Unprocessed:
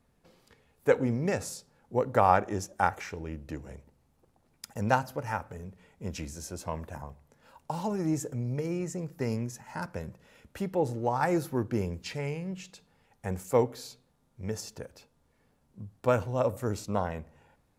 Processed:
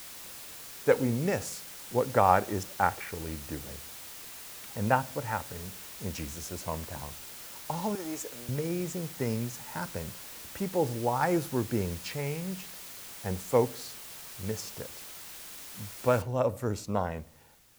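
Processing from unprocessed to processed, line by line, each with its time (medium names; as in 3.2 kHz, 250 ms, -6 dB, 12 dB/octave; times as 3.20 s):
2.63–6.11 s: low-pass 3 kHz 24 dB/octave
7.95–8.49 s: high-pass 480 Hz
12.61–13.28 s: distance through air 140 m
16.22 s: noise floor step -45 dB -62 dB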